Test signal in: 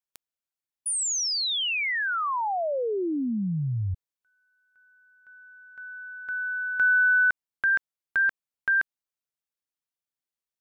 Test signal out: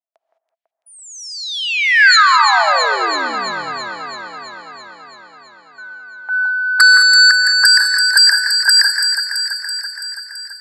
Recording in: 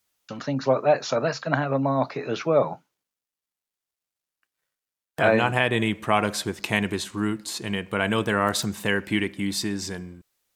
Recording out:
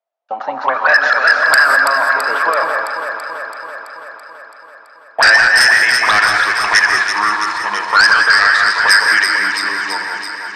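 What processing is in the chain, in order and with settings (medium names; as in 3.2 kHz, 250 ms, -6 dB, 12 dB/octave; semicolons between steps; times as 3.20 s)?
frequency weighting A; gate -44 dBFS, range -15 dB; high-pass 54 Hz; treble shelf 8.4 kHz -4 dB; in parallel at -3.5 dB: saturation -15.5 dBFS; on the sum: auto-wah 660–1700 Hz, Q 12, up, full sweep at -18 dBFS; sine folder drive 14 dB, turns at -13.5 dBFS; on a send: echo whose repeats swap between lows and highs 166 ms, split 2.1 kHz, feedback 82%, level -5 dB; on the sum: gated-style reverb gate 230 ms rising, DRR 7 dB; loudness maximiser +10 dB; trim -1 dB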